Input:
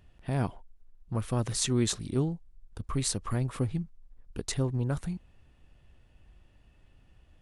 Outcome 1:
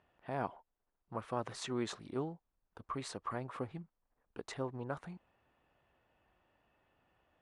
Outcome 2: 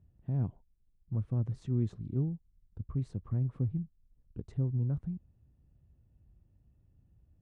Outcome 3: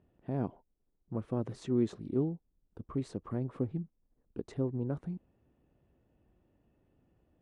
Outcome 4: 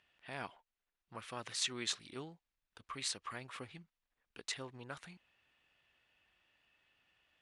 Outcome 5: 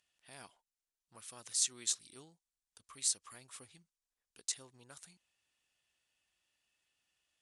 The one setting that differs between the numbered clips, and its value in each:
band-pass, frequency: 940, 110, 330, 2500, 7600 Hz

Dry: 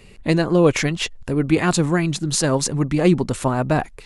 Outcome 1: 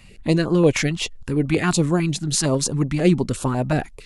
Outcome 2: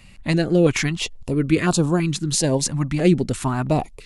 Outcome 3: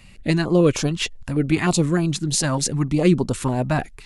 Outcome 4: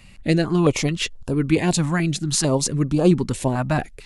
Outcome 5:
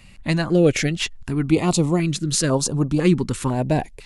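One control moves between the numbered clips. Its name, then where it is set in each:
stepped notch, rate: 11, 3, 6.6, 4.5, 2 Hz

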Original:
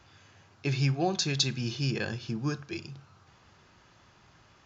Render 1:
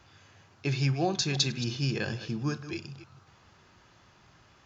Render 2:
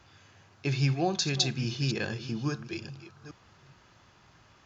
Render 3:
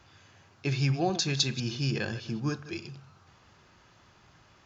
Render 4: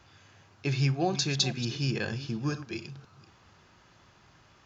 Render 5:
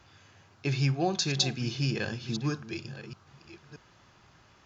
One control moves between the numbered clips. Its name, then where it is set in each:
reverse delay, time: 0.152, 0.414, 0.1, 0.254, 0.627 s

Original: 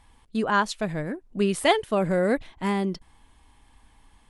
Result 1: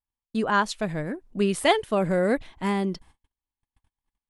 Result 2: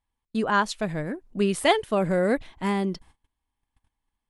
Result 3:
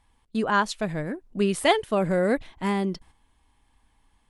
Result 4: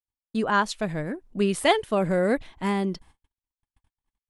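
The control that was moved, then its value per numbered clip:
gate, range: -39, -26, -8, -54 dB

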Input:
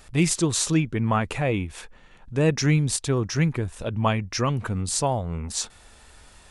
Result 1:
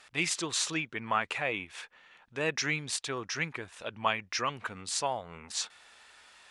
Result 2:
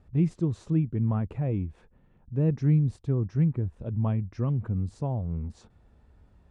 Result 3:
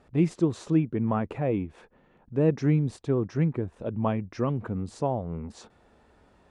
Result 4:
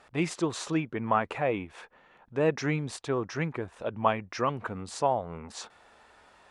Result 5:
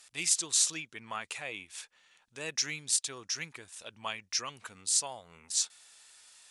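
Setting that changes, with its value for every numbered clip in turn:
band-pass, frequency: 2300, 110, 310, 850, 6900 Hz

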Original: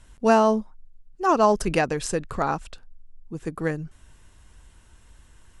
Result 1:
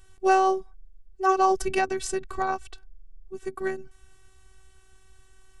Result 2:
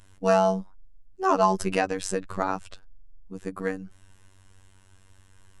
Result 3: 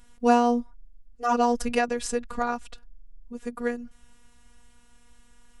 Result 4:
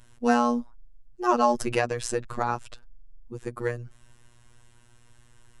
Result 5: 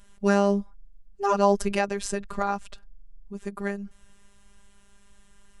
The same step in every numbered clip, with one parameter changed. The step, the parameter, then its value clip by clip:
robotiser, frequency: 380, 95, 240, 120, 200 Hz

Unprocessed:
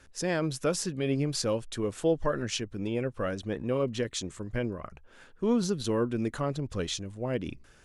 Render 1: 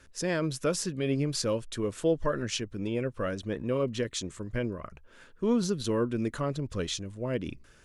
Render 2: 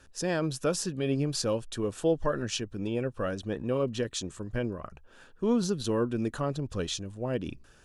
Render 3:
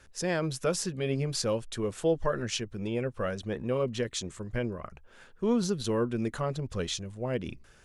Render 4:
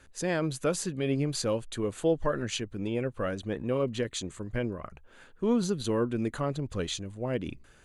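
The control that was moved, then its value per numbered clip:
notch, frequency: 780, 2100, 290, 5400 Hz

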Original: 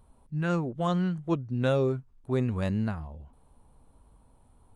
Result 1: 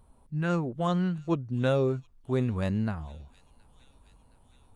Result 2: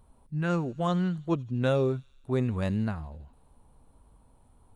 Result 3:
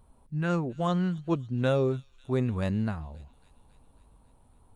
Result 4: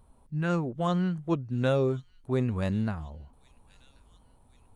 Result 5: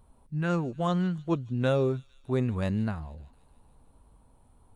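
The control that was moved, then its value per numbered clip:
thin delay, time: 720, 82, 273, 1084, 152 ms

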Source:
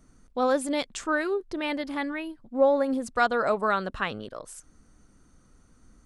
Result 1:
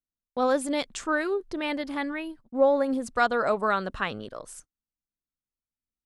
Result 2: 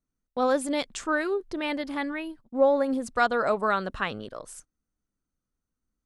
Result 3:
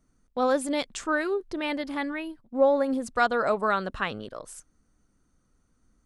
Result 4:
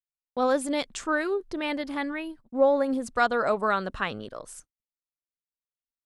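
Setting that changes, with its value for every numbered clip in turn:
gate, range: -42, -27, -10, -58 dB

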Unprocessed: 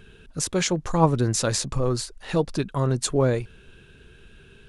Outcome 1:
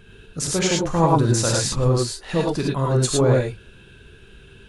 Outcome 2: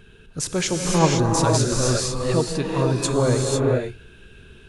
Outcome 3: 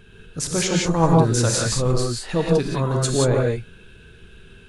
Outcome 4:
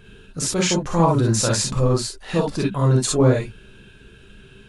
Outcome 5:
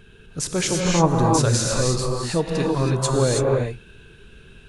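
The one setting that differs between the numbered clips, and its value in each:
non-linear reverb, gate: 130, 530, 200, 80, 350 ms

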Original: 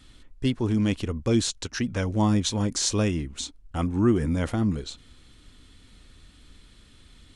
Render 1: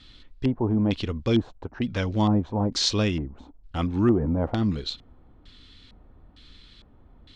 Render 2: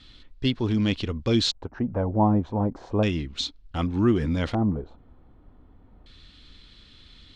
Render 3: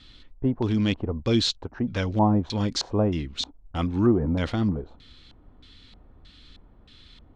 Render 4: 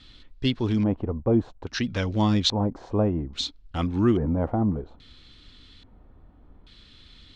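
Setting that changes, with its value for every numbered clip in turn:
LFO low-pass, rate: 1.1, 0.33, 1.6, 0.6 Hz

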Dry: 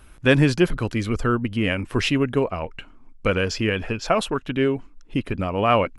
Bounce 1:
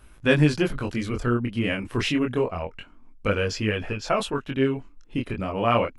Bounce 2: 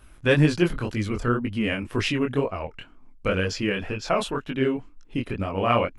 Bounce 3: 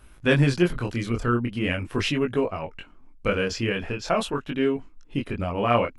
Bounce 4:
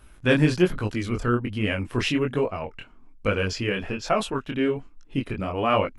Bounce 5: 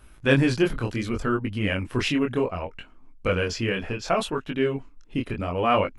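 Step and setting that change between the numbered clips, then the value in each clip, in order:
chorus, rate: 0.27, 2, 0.42, 1.2, 0.67 Hz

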